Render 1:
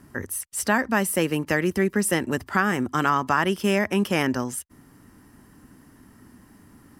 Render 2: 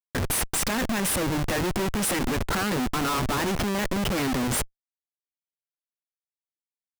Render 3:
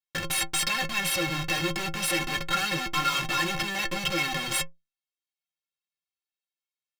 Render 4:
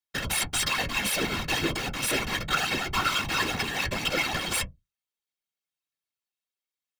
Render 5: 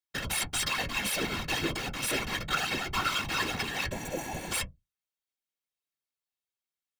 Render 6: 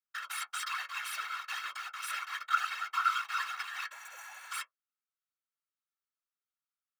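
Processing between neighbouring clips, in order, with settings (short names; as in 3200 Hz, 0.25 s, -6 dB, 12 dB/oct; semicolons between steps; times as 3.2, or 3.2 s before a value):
in parallel at -1 dB: compressor 10:1, threshold -29 dBFS, peak gain reduction 14.5 dB; on the sum: Schmitt trigger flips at -31 dBFS; gain -1.5 dB
bell 3000 Hz +13 dB 2.2 oct; metallic resonator 160 Hz, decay 0.22 s, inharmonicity 0.03; gain +3.5 dB
whisperiser
spectral repair 3.94–4.49, 1000–5700 Hz before; gain -3.5 dB
ladder high-pass 1200 Hz, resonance 75%; gain +2 dB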